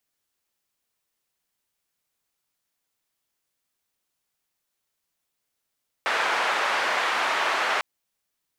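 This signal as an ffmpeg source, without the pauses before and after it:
ffmpeg -f lavfi -i "anoisesrc=color=white:duration=1.75:sample_rate=44100:seed=1,highpass=frequency=740,lowpass=frequency=1600,volume=-6.2dB" out.wav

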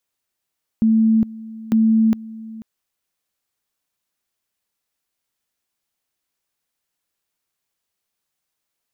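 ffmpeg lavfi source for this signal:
ffmpeg -f lavfi -i "aevalsrc='pow(10,(-11.5-19.5*gte(mod(t,0.9),0.41))/20)*sin(2*PI*222*t)':duration=1.8:sample_rate=44100" out.wav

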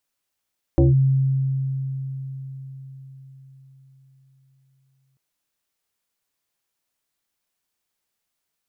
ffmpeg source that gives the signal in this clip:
ffmpeg -f lavfi -i "aevalsrc='0.282*pow(10,-3*t/4.93)*sin(2*PI*134*t+1.7*clip(1-t/0.16,0,1)*sin(2*PI*1.54*134*t))':duration=4.39:sample_rate=44100" out.wav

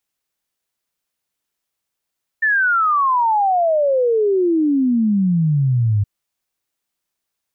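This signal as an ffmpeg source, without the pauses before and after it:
ffmpeg -f lavfi -i "aevalsrc='0.224*clip(min(t,3.62-t)/0.01,0,1)*sin(2*PI*1800*3.62/log(99/1800)*(exp(log(99/1800)*t/3.62)-1))':duration=3.62:sample_rate=44100" out.wav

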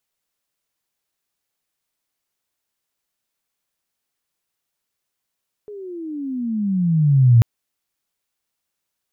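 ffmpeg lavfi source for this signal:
ffmpeg -f lavfi -i "aevalsrc='pow(10,(-7+25*(t/1.74-1))/20)*sin(2*PI*425*1.74/(-23*log(2)/12)*(exp(-23*log(2)/12*t/1.74)-1))':duration=1.74:sample_rate=44100" out.wav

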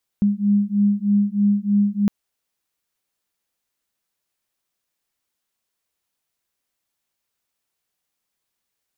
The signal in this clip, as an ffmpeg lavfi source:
ffmpeg -f lavfi -i "aevalsrc='0.119*(sin(2*PI*202*t)+sin(2*PI*205.2*t))':duration=1.86:sample_rate=44100" out.wav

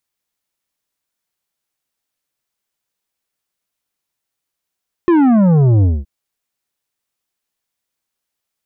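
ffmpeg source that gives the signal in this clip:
ffmpeg -f lavfi -i "aevalsrc='0.355*clip((0.97-t)/0.22,0,1)*tanh(2.99*sin(2*PI*360*0.97/log(65/360)*(exp(log(65/360)*t/0.97)-1)))/tanh(2.99)':duration=0.97:sample_rate=44100" out.wav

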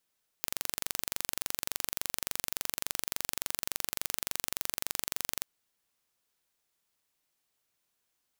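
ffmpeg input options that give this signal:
ffmpeg -f lavfi -i "aevalsrc='0.631*eq(mod(n,1877),0)':duration=4.98:sample_rate=44100" out.wav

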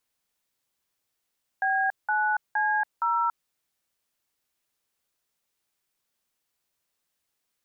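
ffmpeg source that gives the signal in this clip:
ffmpeg -f lavfi -i "aevalsrc='0.0596*clip(min(mod(t,0.466),0.282-mod(t,0.466))/0.002,0,1)*(eq(floor(t/0.466),0)*(sin(2*PI*770*mod(t,0.466))+sin(2*PI*1633*mod(t,0.466)))+eq(floor(t/0.466),1)*(sin(2*PI*852*mod(t,0.466))+sin(2*PI*1477*mod(t,0.466)))+eq(floor(t/0.466),2)*(sin(2*PI*852*mod(t,0.466))+sin(2*PI*1633*mod(t,0.466)))+eq(floor(t/0.466),3)*(sin(2*PI*941*mod(t,0.466))+sin(2*PI*1336*mod(t,0.466))))':duration=1.864:sample_rate=44100" out.wav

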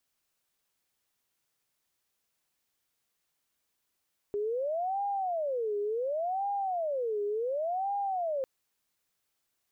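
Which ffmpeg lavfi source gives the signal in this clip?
ffmpeg -f lavfi -i "aevalsrc='0.0376*sin(2*PI*(608*t-199/(2*PI*0.69)*sin(2*PI*0.69*t)))':duration=4.1:sample_rate=44100" out.wav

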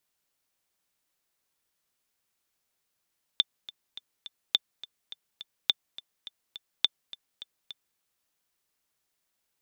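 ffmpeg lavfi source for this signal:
ffmpeg -f lavfi -i "aevalsrc='pow(10,(-8-19*gte(mod(t,4*60/209),60/209))/20)*sin(2*PI*3550*mod(t,60/209))*exp(-6.91*mod(t,60/209)/0.03)':duration=4.59:sample_rate=44100" out.wav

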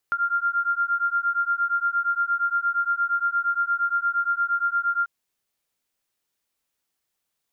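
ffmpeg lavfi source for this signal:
ffmpeg -f lavfi -i "aevalsrc='0.0631*(sin(2*PI*1390*t)+sin(2*PI*1398.6*t))':duration=4.94:sample_rate=44100" out.wav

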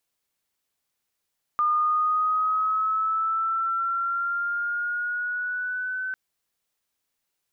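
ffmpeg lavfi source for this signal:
ffmpeg -f lavfi -i "aevalsrc='pow(10,(-19-8*t/4.55)/20)*sin(2*PI*1210*4.55/(4*log(2)/12)*(exp(4*log(2)/12*t/4.55)-1))':duration=4.55:sample_rate=44100" out.wav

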